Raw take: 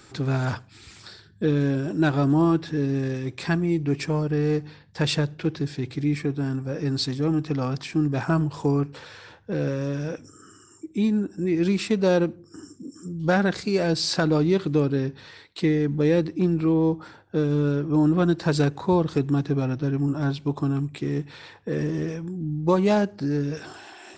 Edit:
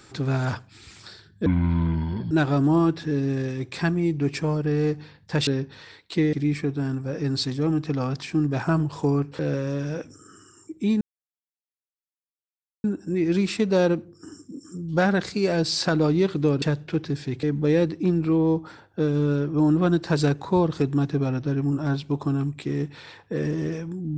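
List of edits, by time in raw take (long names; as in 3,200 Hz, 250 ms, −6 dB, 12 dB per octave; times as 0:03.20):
0:01.46–0:01.97: play speed 60%
0:05.13–0:05.94: swap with 0:14.93–0:15.79
0:09.00–0:09.53: remove
0:11.15: splice in silence 1.83 s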